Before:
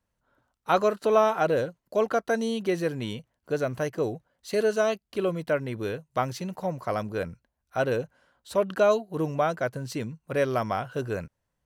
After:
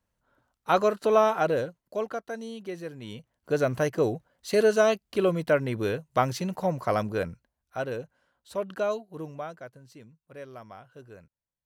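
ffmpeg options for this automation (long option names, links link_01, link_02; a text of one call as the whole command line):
ffmpeg -i in.wav -af "volume=13dB,afade=type=out:start_time=1.33:duration=0.93:silence=0.316228,afade=type=in:start_time=3.01:duration=0.62:silence=0.223872,afade=type=out:start_time=6.97:duration=0.89:silence=0.334965,afade=type=out:start_time=8.8:duration=1:silence=0.281838" out.wav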